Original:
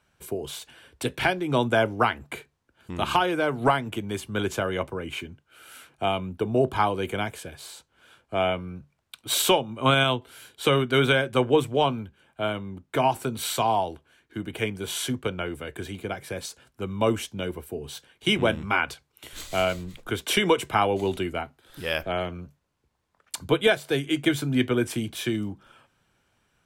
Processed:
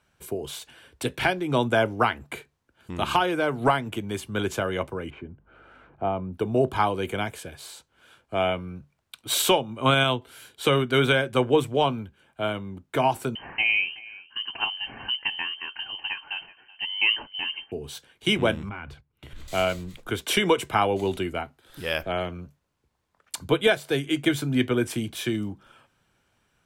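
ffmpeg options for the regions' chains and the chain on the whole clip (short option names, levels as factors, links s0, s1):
-filter_complex "[0:a]asettb=1/sr,asplit=3[s0][s1][s2];[s0]atrim=end=5.104[s3];[s1]atrim=start=5.1:end=6.33,asetpts=PTS-STARTPTS,afade=t=in:d=0.004:c=qsin,afade=t=out:st=1.226:d=0.004:c=qsin,lowpass=1100,acompressor=mode=upward:threshold=0.00562:ratio=2.5:attack=3.2:release=140:knee=2.83:detection=peak,aeval=exprs='val(0)+0.000708*(sin(2*PI*50*n/s)+sin(2*PI*2*50*n/s)/2+sin(2*PI*3*50*n/s)/3+sin(2*PI*4*50*n/s)/4+sin(2*PI*5*50*n/s)/5)':c=same[s4];[s2]atrim=start=6.326[s5];[s3][s4]acrossfade=d=0.004:c1=hsin:c2=qsin[s6];[s6][s5]acrossfade=d=0.004:c1=qsin:c2=hsin,asettb=1/sr,asplit=3[s7][s8][s9];[s7]atrim=end=13.354[s10];[s8]atrim=start=13.35:end=17.72,asetpts=PTS-STARTPTS,afade=t=in:d=0.004:c=qsin,afade=t=out:st=4.366:d=0.004:c=qsin,aecho=1:1:376:0.1,atrim=end_sample=192717,lowpass=f=2700:t=q:w=0.5098,lowpass=f=2700:t=q:w=0.6013,lowpass=f=2700:t=q:w=0.9,lowpass=f=2700:t=q:w=2.563,afreqshift=-3200[s11];[s9]atrim=start=17.716[s12];[s10][s11]acrossfade=d=0.004:c1=hsin:c2=qsin[s13];[s13][s12]acrossfade=d=0.004:c1=qsin:c2=hsin,asettb=1/sr,asplit=3[s14][s15][s16];[s14]atrim=end=18.694[s17];[s15]atrim=start=18.69:end=19.48,asetpts=PTS-STARTPTS,afade=t=in:d=0.004:c=qsin,afade=t=out:st=0.786:d=0.004:c=qsin,agate=range=0.282:threshold=0.00158:ratio=16:release=100:detection=peak,bass=f=250:g=15,treble=f=4000:g=-14,acompressor=threshold=0.01:ratio=2.5:attack=3.2:release=140:knee=1:detection=peak[s18];[s16]atrim=start=19.476[s19];[s17][s18]acrossfade=d=0.004:c1=hsin:c2=qsin[s20];[s20][s19]acrossfade=d=0.004:c1=qsin:c2=hsin"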